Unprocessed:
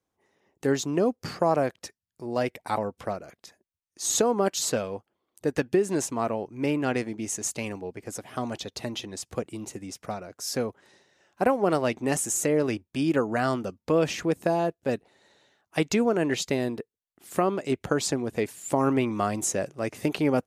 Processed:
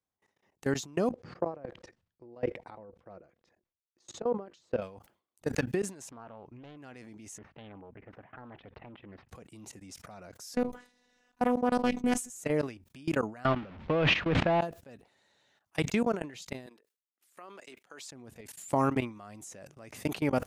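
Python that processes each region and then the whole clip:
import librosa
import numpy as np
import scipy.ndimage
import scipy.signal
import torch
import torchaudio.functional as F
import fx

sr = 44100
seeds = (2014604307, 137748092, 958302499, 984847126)

y = fx.chain(x, sr, fx.level_steps(step_db=13),
    fx.spacing_loss(db_at_10k=26),
    fx.small_body(hz=(350.0, 490.0), ring_ms=50, db=9), at=(1.11, 4.82))
y = fx.chain(y, sr, fx.lowpass(hz=3100.0, slope=12),
    fx.doppler_dist(depth_ms=0.4), at=(6.1, 6.77))
y = fx.chain(y, sr, fx.cheby2_lowpass(hz=6700.0, order=4, stop_db=60),
    fx.doppler_dist(depth_ms=0.43), at=(7.38, 9.29))
y = fx.chain(y, sr, fx.low_shelf(hz=380.0, db=9.5),
    fx.robotise(hz=246.0),
    fx.doppler_dist(depth_ms=0.22), at=(10.54, 12.3))
y = fx.chain(y, sr, fx.zero_step(step_db=-26.5),
    fx.lowpass(hz=3200.0, slope=24),
    fx.sustainer(db_per_s=31.0), at=(13.45, 14.61))
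y = fx.chain(y, sr, fx.highpass(hz=480.0, slope=12),
    fx.peak_eq(hz=700.0, db=-5.5, octaves=0.96),
    fx.level_steps(step_db=19), at=(16.66, 18.12))
y = fx.level_steps(y, sr, step_db=23)
y = fx.peak_eq(y, sr, hz=380.0, db=-5.5, octaves=1.1)
y = fx.sustainer(y, sr, db_per_s=150.0)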